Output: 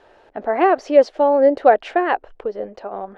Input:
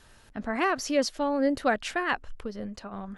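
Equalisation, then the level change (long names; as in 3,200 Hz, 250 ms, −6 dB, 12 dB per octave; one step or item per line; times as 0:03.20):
low-pass filter 6,700 Hz 12 dB per octave
bass and treble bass −12 dB, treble −15 dB
flat-topped bell 520 Hz +11 dB
+4.0 dB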